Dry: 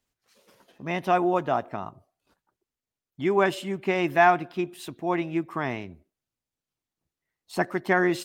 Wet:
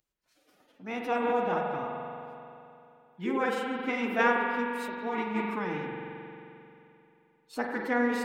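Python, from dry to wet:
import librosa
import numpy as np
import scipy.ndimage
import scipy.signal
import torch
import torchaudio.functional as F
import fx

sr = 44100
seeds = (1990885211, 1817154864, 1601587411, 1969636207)

y = fx.rev_spring(x, sr, rt60_s=2.9, pass_ms=(44,), chirp_ms=55, drr_db=-0.5)
y = fx.pitch_keep_formants(y, sr, semitones=5.0)
y = F.gain(torch.from_numpy(y), -7.0).numpy()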